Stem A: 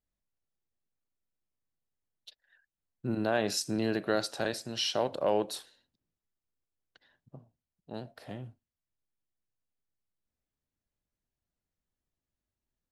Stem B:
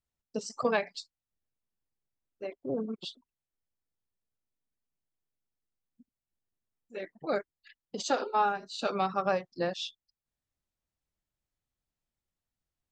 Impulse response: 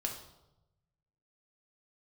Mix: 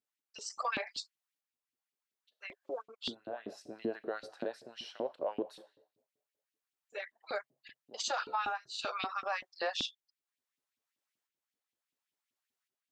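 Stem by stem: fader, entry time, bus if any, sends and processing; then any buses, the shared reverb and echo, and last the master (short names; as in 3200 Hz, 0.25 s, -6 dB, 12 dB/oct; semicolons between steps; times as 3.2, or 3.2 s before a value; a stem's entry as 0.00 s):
-12.0 dB, 0.00 s, send -12 dB, tilt -4 dB/oct; auto duck -19 dB, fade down 0.30 s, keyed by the second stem
+2.5 dB, 0.00 s, no send, HPF 960 Hz 12 dB/oct; tremolo saw up 0.71 Hz, depth 50%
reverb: on, RT60 0.95 s, pre-delay 4 ms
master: LFO high-pass saw up 5.2 Hz 250–3200 Hz; limiter -25 dBFS, peak gain reduction 11.5 dB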